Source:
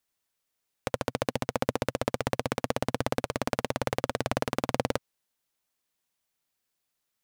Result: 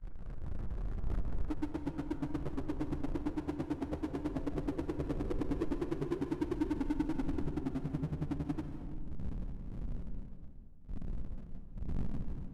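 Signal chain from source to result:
expanding power law on the bin magnitudes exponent 1.9
wind on the microphone 100 Hz −42 dBFS
noise gate −51 dBFS, range −41 dB
parametric band 140 Hz −9.5 dB 2.1 octaves
brickwall limiter −28.5 dBFS, peak gain reduction 14.5 dB
low-pass filter sweep 2,600 Hz → 370 Hz, 0:01.04–0:04.55
power curve on the samples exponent 0.5
convolution reverb RT60 1.1 s, pre-delay 77 ms, DRR 6.5 dB
wrong playback speed 78 rpm record played at 45 rpm
level −1.5 dB

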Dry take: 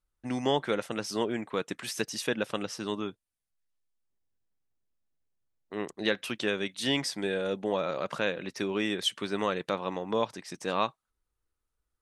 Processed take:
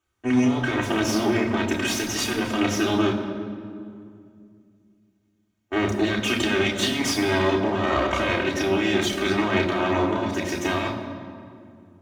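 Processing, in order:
lower of the sound and its delayed copy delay 3.2 ms
compressor whose output falls as the input rises −34 dBFS, ratio −1
convolution reverb RT60 2.3 s, pre-delay 3 ms, DRR −2.5 dB

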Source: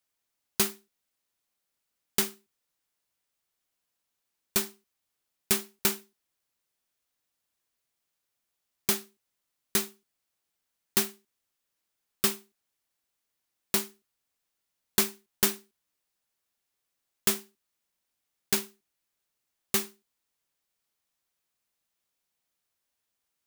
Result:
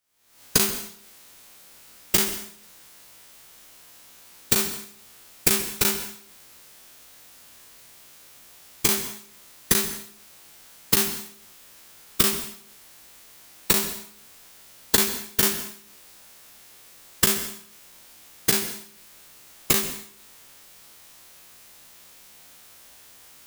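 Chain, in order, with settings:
every bin's largest magnitude spread in time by 60 ms
camcorder AGC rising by 70 dB per second
dense smooth reverb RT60 0.55 s, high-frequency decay 1×, pre-delay 115 ms, DRR 11.5 dB
level −1.5 dB

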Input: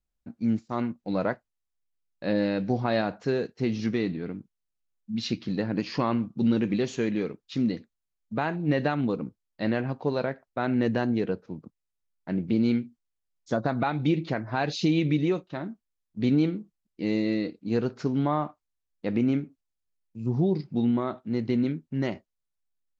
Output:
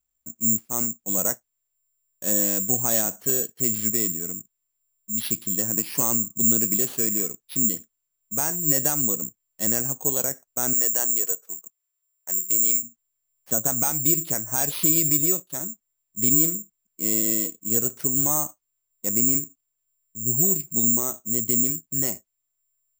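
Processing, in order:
bad sample-rate conversion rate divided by 6×, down none, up zero stuff
0:10.73–0:12.83: high-pass filter 530 Hz 12 dB per octave
level −4.5 dB

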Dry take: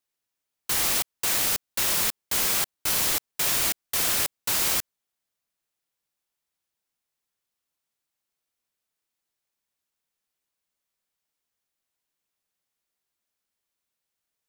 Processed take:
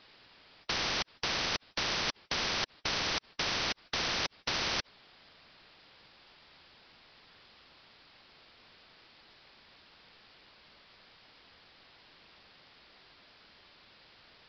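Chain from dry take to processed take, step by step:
downsampling to 11,025 Hz
every bin compressed towards the loudest bin 4 to 1

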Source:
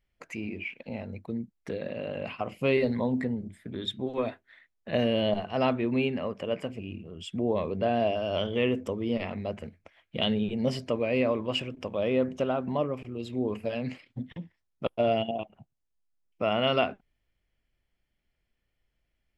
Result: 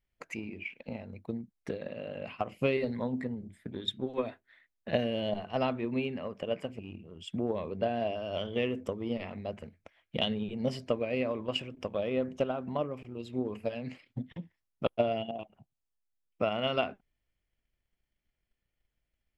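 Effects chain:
transient designer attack +8 dB, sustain +2 dB
level −7 dB

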